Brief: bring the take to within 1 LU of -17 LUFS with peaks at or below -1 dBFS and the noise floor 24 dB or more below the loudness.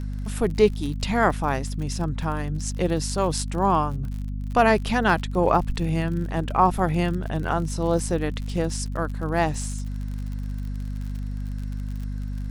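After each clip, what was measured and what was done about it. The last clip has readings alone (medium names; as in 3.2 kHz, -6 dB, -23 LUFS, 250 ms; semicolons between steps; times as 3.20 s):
tick rate 51 per s; hum 50 Hz; highest harmonic 250 Hz; hum level -27 dBFS; loudness -25.0 LUFS; peak level -4.5 dBFS; loudness target -17.0 LUFS
-> de-click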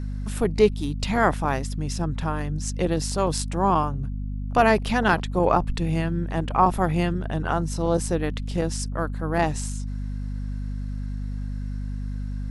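tick rate 0.080 per s; hum 50 Hz; highest harmonic 250 Hz; hum level -27 dBFS
-> hum notches 50/100/150/200/250 Hz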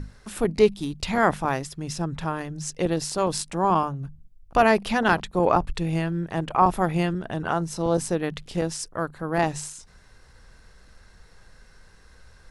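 hum not found; loudness -25.0 LUFS; peak level -5.0 dBFS; loudness target -17.0 LUFS
-> trim +8 dB; peak limiter -1 dBFS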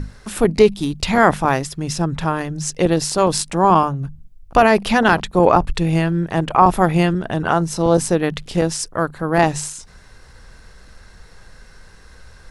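loudness -17.5 LUFS; peak level -1.0 dBFS; noise floor -45 dBFS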